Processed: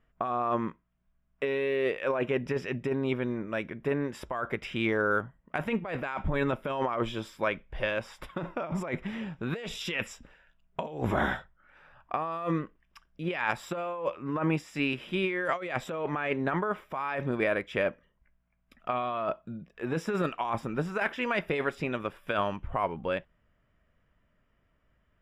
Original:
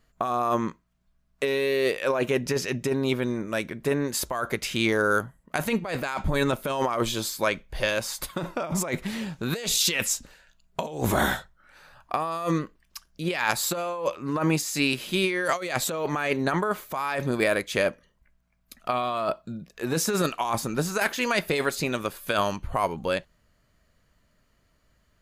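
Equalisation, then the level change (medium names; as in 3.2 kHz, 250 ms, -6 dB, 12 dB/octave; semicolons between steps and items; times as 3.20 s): Savitzky-Golay filter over 25 samples; -4.0 dB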